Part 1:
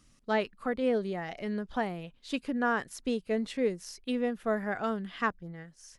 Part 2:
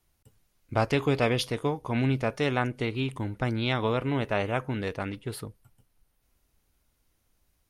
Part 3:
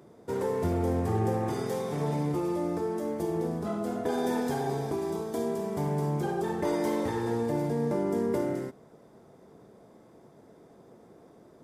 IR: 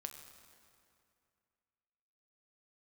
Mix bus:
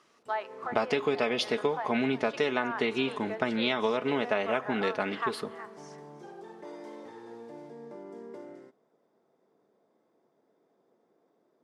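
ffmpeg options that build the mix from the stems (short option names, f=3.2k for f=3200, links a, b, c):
-filter_complex "[0:a]highpass=720,equalizer=f=920:t=o:w=1.9:g=14,acompressor=threshold=-45dB:ratio=1.5,volume=-4.5dB,asplit=4[a][b][c][d];[b]volume=-3.5dB[e];[c]volume=-12dB[f];[1:a]aecho=1:1:4.7:0.52,volume=3dB,asplit=2[g][h];[h]volume=-11dB[i];[2:a]volume=-14.5dB[j];[d]apad=whole_len=513005[k];[j][k]sidechaincompress=threshold=-39dB:ratio=8:attack=16:release=258[l];[3:a]atrim=start_sample=2205[m];[e][i]amix=inputs=2:normalize=0[n];[n][m]afir=irnorm=-1:irlink=0[o];[f]aecho=0:1:367:1[p];[a][g][l][o][p]amix=inputs=5:normalize=0,highpass=270,lowpass=5.7k,acompressor=threshold=-23dB:ratio=10"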